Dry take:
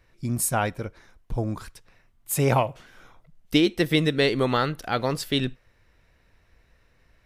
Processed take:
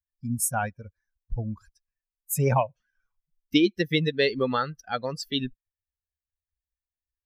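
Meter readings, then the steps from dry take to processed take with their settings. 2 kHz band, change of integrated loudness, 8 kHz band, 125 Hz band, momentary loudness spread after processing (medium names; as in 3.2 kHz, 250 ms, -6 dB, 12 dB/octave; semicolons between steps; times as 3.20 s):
-2.5 dB, -2.0 dB, -1.5 dB, -2.5 dB, 12 LU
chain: expander on every frequency bin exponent 2; trim +1.5 dB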